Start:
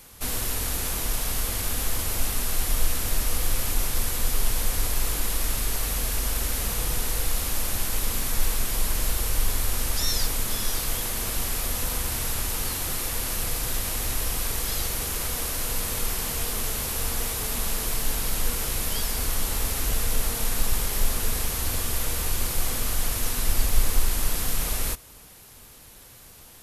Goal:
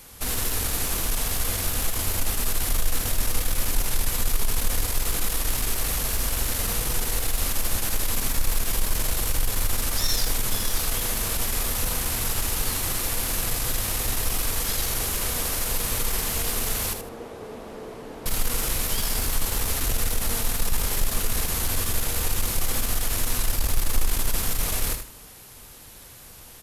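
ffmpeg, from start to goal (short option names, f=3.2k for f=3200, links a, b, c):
-filter_complex "[0:a]asettb=1/sr,asplit=3[a][b][c];[a]atrim=end=16.934[d];[b]atrim=start=16.93:end=18.26,asetpts=PTS-STARTPTS,afade=t=in:d=0.004:c=qsin,afade=t=out:st=1.326:d=0.004:c=qsin,bandpass=f=420:t=q:w=1.2:csg=0[e];[c]atrim=start=18.256[f];[d][e]acrossfade=d=0.004:c1=hsin:c2=qsin[g];[g][f]acrossfade=d=0.004:c1=qsin:c2=hsin,asplit=2[h][i];[i]asoftclip=type=hard:threshold=-23.5dB,volume=-4dB[j];[h][j]amix=inputs=2:normalize=0,aeval=exprs='0.531*(cos(1*acos(clip(val(0)/0.531,-1,1)))-cos(1*PI/2))+0.0335*(cos(5*acos(clip(val(0)/0.531,-1,1)))-cos(5*PI/2))+0.0335*(cos(6*acos(clip(val(0)/0.531,-1,1)))-cos(6*PI/2))':c=same,aecho=1:1:78|156|234:0.398|0.0995|0.0249,volume=-4.5dB"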